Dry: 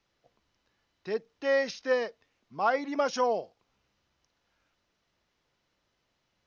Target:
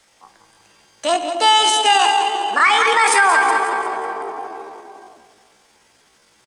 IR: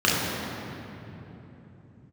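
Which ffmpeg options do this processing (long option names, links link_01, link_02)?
-filter_complex "[0:a]aecho=1:1:179|358|537|716|895:0.316|0.155|0.0759|0.0372|0.0182,asplit=2[link_01][link_02];[1:a]atrim=start_sample=2205,asetrate=48510,aresample=44100[link_03];[link_02][link_03]afir=irnorm=-1:irlink=0,volume=-24.5dB[link_04];[link_01][link_04]amix=inputs=2:normalize=0,asetrate=70004,aresample=44100,atempo=0.629961,lowshelf=frequency=410:gain=-10,acrossover=split=370|940[link_05][link_06][link_07];[link_06]acompressor=threshold=-46dB:ratio=6[link_08];[link_05][link_08][link_07]amix=inputs=3:normalize=0,alimiter=level_in=25dB:limit=-1dB:release=50:level=0:latency=1,volume=-4dB"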